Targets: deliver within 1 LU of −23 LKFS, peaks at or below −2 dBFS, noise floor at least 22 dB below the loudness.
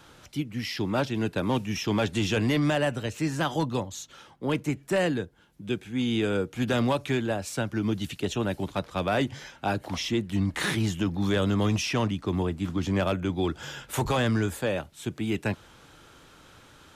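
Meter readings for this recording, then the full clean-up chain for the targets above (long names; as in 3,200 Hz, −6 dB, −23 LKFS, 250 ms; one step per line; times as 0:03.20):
share of clipped samples 0.7%; peaks flattened at −18.0 dBFS; integrated loudness −28.0 LKFS; sample peak −18.0 dBFS; target loudness −23.0 LKFS
→ clipped peaks rebuilt −18 dBFS
level +5 dB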